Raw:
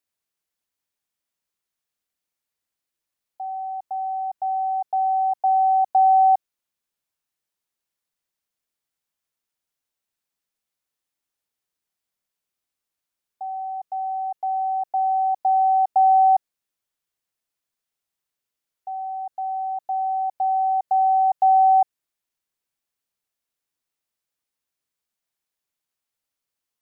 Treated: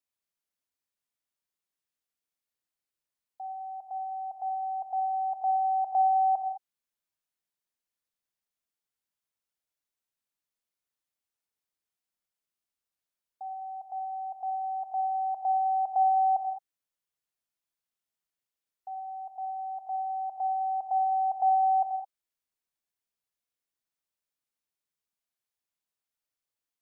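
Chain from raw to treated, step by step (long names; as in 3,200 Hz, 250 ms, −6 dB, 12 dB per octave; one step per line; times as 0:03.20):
reverb whose tail is shaped and stops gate 230 ms flat, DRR 5 dB
level −7.5 dB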